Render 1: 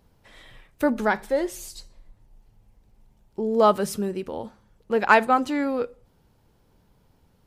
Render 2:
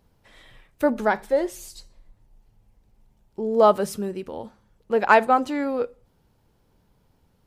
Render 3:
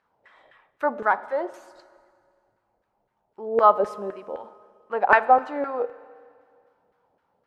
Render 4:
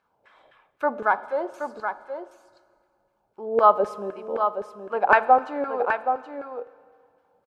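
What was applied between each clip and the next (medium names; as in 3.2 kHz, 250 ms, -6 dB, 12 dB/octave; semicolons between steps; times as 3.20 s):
dynamic bell 620 Hz, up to +5 dB, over -29 dBFS, Q 0.93; trim -2 dB
LFO band-pass saw down 3.9 Hz 520–1600 Hz; Schroeder reverb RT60 2.1 s, combs from 27 ms, DRR 16.5 dB; trim +6.5 dB
Butterworth band-stop 1.9 kHz, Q 7.9; on a send: delay 774 ms -7.5 dB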